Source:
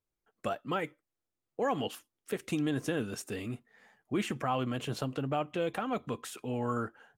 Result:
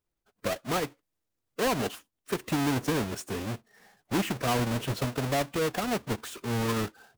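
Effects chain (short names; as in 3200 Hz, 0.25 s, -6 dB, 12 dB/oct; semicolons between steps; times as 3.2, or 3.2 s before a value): half-waves squared off; formant-preserving pitch shift -1 st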